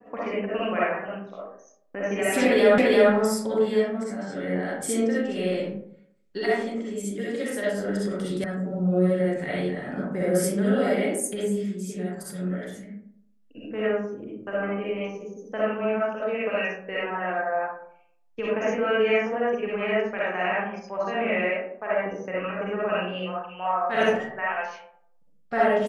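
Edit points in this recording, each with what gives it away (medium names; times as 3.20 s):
2.78 s: repeat of the last 0.34 s
8.44 s: sound stops dead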